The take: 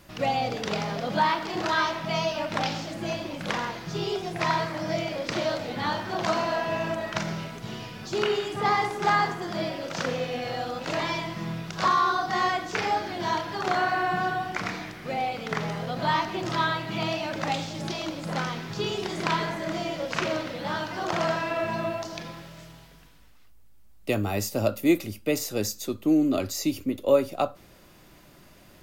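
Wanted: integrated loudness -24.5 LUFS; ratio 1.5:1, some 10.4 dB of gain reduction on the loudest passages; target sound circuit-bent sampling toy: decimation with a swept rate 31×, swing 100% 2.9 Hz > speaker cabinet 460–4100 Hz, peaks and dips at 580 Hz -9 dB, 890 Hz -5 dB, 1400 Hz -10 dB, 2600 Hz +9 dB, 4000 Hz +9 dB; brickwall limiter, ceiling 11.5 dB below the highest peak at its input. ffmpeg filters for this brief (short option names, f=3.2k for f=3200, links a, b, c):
-af "acompressor=threshold=-45dB:ratio=1.5,alimiter=level_in=5dB:limit=-24dB:level=0:latency=1,volume=-5dB,acrusher=samples=31:mix=1:aa=0.000001:lfo=1:lforange=31:lforate=2.9,highpass=460,equalizer=f=580:t=q:w=4:g=-9,equalizer=f=890:t=q:w=4:g=-5,equalizer=f=1.4k:t=q:w=4:g=-10,equalizer=f=2.6k:t=q:w=4:g=9,equalizer=f=4k:t=q:w=4:g=9,lowpass=f=4.1k:w=0.5412,lowpass=f=4.1k:w=1.3066,volume=17.5dB"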